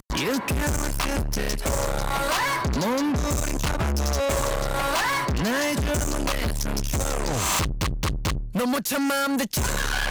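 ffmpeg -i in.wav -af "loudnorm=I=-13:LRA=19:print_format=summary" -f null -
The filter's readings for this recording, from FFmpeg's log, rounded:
Input Integrated:    -24.9 LUFS
Input True Peak:     -15.1 dBTP
Input LRA:             0.9 LU
Input Threshold:     -34.9 LUFS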